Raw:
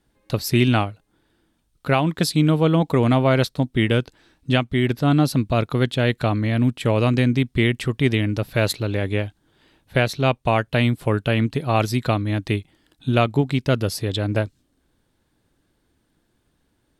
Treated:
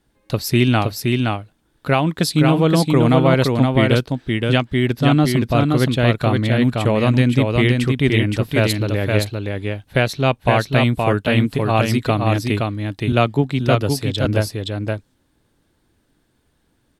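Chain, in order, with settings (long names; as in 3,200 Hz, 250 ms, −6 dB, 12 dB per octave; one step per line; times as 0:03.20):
single-tap delay 520 ms −3.5 dB
0:13.12–0:14.25: multiband upward and downward expander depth 40%
level +2 dB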